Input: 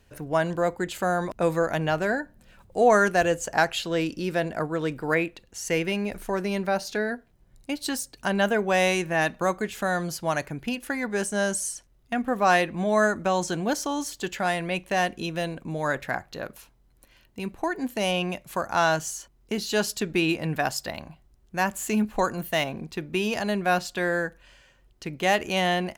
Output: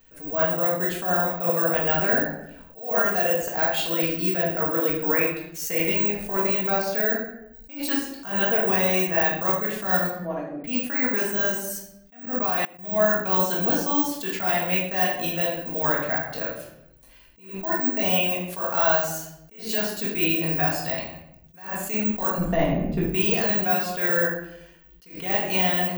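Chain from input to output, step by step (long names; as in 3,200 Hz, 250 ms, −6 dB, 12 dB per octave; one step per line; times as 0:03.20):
de-essing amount 60%
bad sample-rate conversion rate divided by 2×, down none, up zero stuff
0:10.07–0:10.64: resonant band-pass 360 Hz, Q 1.5
transient designer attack +2 dB, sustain −4 dB
0:22.38–0:23.02: spectral tilt −4.5 dB per octave
brickwall limiter −10.5 dBFS, peak gain reduction 9.5 dB
low-shelf EQ 330 Hz −5.5 dB
convolution reverb RT60 0.80 s, pre-delay 4 ms, DRR −4 dB
0:12.20–0:12.85: output level in coarse steps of 22 dB
level that may rise only so fast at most 120 dB per second
level −1.5 dB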